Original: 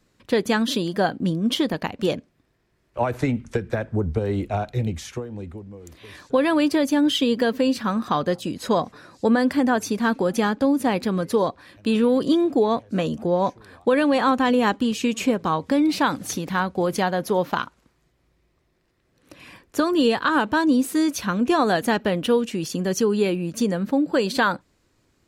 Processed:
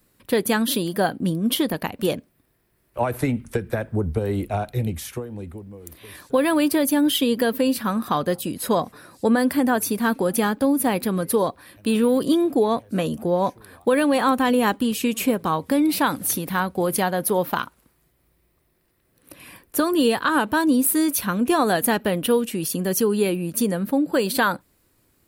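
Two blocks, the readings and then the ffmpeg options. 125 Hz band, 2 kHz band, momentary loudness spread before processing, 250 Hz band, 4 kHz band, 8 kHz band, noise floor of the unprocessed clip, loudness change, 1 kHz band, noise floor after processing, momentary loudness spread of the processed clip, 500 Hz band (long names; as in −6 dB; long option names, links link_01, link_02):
0.0 dB, 0.0 dB, 8 LU, 0.0 dB, 0.0 dB, +7.0 dB, −67 dBFS, +0.5 dB, 0.0 dB, −66 dBFS, 8 LU, 0.0 dB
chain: -af "aexciter=amount=7.6:drive=3.5:freq=9100"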